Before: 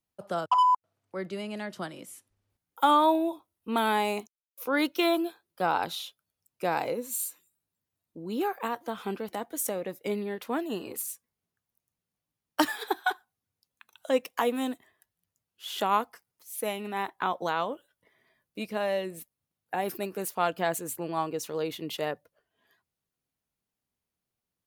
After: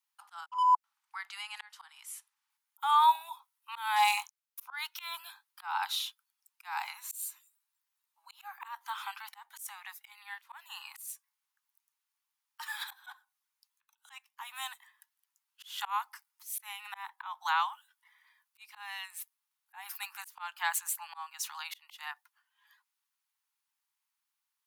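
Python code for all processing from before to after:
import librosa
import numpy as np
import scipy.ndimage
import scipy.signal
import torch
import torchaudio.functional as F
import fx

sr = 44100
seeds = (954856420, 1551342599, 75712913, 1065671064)

y = fx.chain(x, sr, fx.leveller(passes=1),
    fx.doubler(ms=24.0, db=-6), at=(3.96, 4.62))
y = scipy.signal.sosfilt(scipy.signal.butter(16, 830.0, 'highpass', fs=sr, output='sos'), y)
y = fx.auto_swell(y, sr, attack_ms=304.0)
y = F.gain(torch.from_numpy(y), 3.0).numpy()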